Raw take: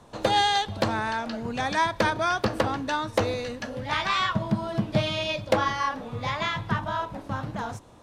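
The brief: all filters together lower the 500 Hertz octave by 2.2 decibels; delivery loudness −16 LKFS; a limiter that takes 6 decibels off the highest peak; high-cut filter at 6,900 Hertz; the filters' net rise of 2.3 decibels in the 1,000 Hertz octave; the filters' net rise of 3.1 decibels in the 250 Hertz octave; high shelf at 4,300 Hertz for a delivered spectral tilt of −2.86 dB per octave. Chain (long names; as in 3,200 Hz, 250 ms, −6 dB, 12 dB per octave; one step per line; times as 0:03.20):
low-pass filter 6,900 Hz
parametric band 250 Hz +5 dB
parametric band 500 Hz −5 dB
parametric band 1,000 Hz +3.5 dB
high-shelf EQ 4,300 Hz +7 dB
level +10.5 dB
brickwall limiter −4.5 dBFS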